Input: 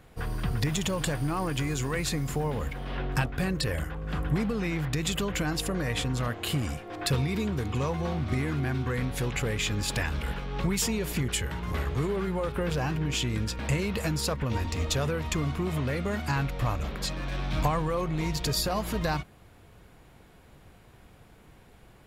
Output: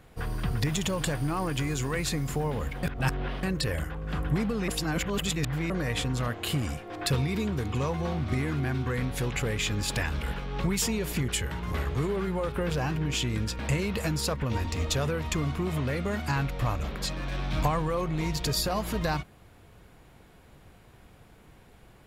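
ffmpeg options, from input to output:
ffmpeg -i in.wav -filter_complex "[0:a]asplit=5[link_01][link_02][link_03][link_04][link_05];[link_01]atrim=end=2.832[link_06];[link_02]atrim=start=2.828:end=3.432,asetpts=PTS-STARTPTS,areverse[link_07];[link_03]atrim=start=3.428:end=4.682[link_08];[link_04]atrim=start=4.678:end=5.702,asetpts=PTS-STARTPTS,areverse[link_09];[link_05]atrim=start=5.698[link_10];[link_06][link_07]acrossfade=duration=0.004:curve1=hsin:curve2=hsin[link_11];[link_11][link_08]acrossfade=duration=0.004:curve1=hsin:curve2=hsin[link_12];[link_12][link_09]acrossfade=duration=0.004:curve1=hsin:curve2=hsin[link_13];[link_13][link_10]acrossfade=duration=0.004:curve1=hsin:curve2=hsin" out.wav

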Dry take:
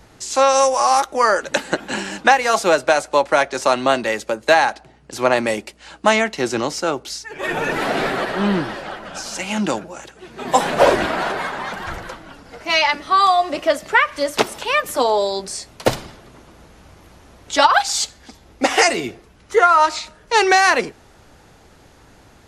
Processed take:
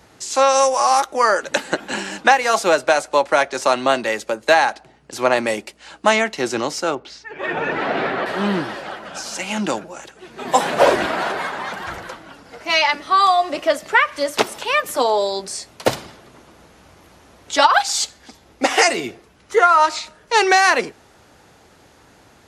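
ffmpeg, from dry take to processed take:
ffmpeg -i in.wav -filter_complex "[0:a]asettb=1/sr,asplit=3[link_01][link_02][link_03];[link_01]atrim=end=6.954[link_04];[link_02]atrim=start=6.95:end=8.26,asetpts=PTS-STARTPTS,afade=type=in:duration=0.004:curve=qsin,afade=type=out:start_time=1.306:duration=0.004:curve=qsin,lowpass=3000[link_05];[link_03]atrim=start=8.256[link_06];[link_04][link_05]acrossfade=duration=0.004:curve1=hsin:curve2=qsin[link_07];[link_07][link_06]acrossfade=duration=0.004:curve1=qsin:curve2=hsin,highpass=52,lowshelf=frequency=170:gain=-6" out.wav

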